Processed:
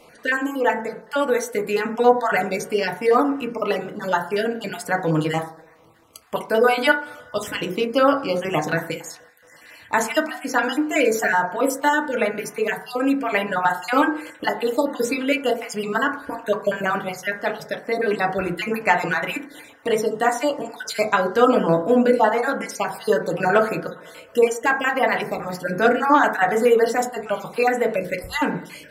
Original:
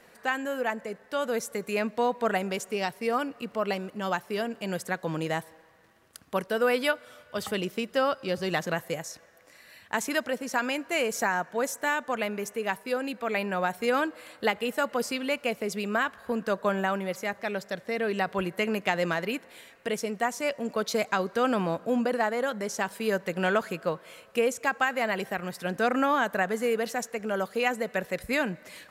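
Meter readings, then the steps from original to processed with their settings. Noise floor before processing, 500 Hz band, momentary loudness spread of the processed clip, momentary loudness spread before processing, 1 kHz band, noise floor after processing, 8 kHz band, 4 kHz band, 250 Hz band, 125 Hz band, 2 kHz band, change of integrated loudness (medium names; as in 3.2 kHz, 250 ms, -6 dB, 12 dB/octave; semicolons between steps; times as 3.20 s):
-56 dBFS, +8.0 dB, 10 LU, 7 LU, +8.5 dB, -49 dBFS, +4.5 dB, +4.5 dB, +7.5 dB, +6.0 dB, +7.0 dB, +7.5 dB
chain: random holes in the spectrogram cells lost 37%; FDN reverb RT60 0.5 s, low-frequency decay 0.95×, high-frequency decay 0.25×, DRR 1 dB; trim +6.5 dB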